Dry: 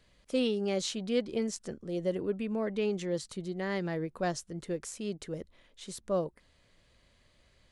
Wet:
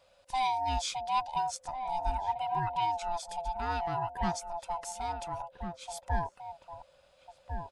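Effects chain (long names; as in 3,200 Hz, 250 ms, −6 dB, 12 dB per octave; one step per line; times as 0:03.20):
neighbouring bands swapped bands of 500 Hz
slap from a distant wall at 240 metres, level −6 dB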